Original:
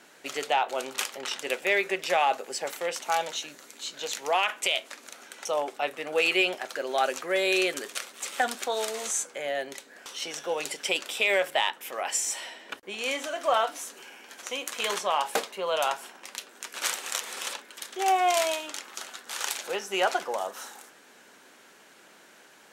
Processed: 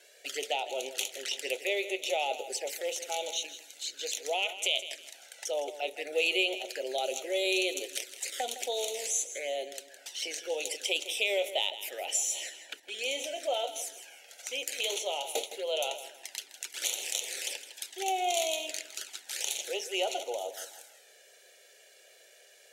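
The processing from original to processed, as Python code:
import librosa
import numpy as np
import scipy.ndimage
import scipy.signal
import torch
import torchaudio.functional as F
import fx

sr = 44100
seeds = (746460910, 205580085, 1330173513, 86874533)

p1 = scipy.signal.sosfilt(scipy.signal.bessel(2, 170.0, 'highpass', norm='mag', fs=sr, output='sos'), x)
p2 = fx.low_shelf(p1, sr, hz=320.0, db=-11.0)
p3 = fx.level_steps(p2, sr, step_db=21)
p4 = p2 + F.gain(torch.from_numpy(p3), -0.5).numpy()
p5 = fx.env_flanger(p4, sr, rest_ms=2.0, full_db=-27.0)
p6 = fx.fixed_phaser(p5, sr, hz=460.0, stages=4)
y = fx.echo_feedback(p6, sr, ms=161, feedback_pct=29, wet_db=-13.0)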